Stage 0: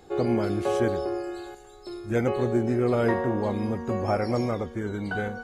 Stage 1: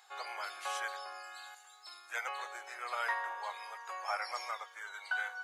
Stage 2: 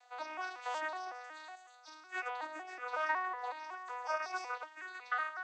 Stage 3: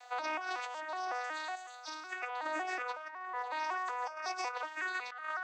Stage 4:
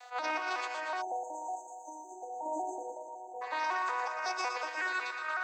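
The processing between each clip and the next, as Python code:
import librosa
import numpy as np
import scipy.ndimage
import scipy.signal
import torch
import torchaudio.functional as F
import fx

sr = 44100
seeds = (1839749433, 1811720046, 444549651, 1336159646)

y1 = scipy.signal.sosfilt(scipy.signal.cheby2(4, 60, 280.0, 'highpass', fs=sr, output='sos'), x)
y1 = y1 * 10.0 ** (-1.0 / 20.0)
y2 = fx.vocoder_arp(y1, sr, chord='major triad', root=59, every_ms=185)
y2 = y2 * 10.0 ** (1.0 / 20.0)
y3 = fx.over_compress(y2, sr, threshold_db=-45.0, ratio=-1.0)
y3 = y3 * 10.0 ** (6.0 / 20.0)
y4 = fx.echo_thinned(y3, sr, ms=117, feedback_pct=72, hz=280.0, wet_db=-7.5)
y4 = fx.spec_erase(y4, sr, start_s=1.02, length_s=2.4, low_hz=960.0, high_hz=6200.0)
y4 = fx.attack_slew(y4, sr, db_per_s=250.0)
y4 = y4 * 10.0 ** (2.5 / 20.0)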